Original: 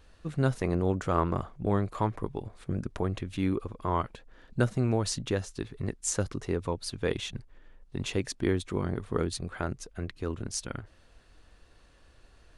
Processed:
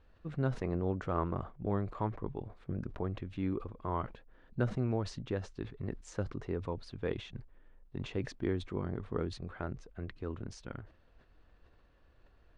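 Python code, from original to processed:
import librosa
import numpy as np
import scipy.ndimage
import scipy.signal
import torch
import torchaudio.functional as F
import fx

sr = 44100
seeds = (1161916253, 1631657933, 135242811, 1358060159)

y = scipy.signal.sosfilt(scipy.signal.butter(2, 5000.0, 'lowpass', fs=sr, output='sos'), x)
y = fx.high_shelf(y, sr, hz=3200.0, db=-12.0)
y = fx.sustainer(y, sr, db_per_s=140.0)
y = y * 10.0 ** (-6.0 / 20.0)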